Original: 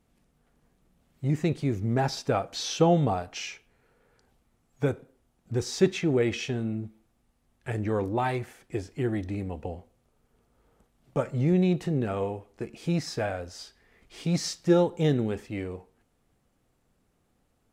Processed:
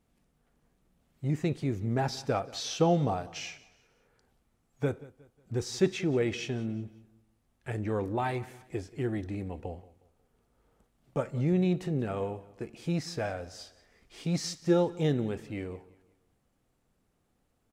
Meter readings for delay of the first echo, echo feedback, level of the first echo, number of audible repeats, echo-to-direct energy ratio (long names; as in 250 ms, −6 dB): 181 ms, 37%, −20.0 dB, 2, −19.5 dB